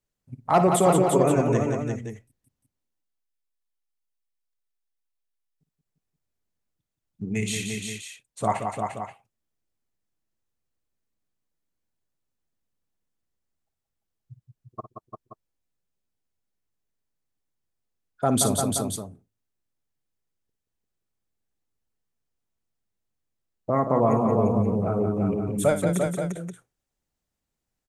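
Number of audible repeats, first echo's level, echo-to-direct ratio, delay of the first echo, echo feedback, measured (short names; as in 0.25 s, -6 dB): 4, -12.0 dB, -1.5 dB, 56 ms, no steady repeat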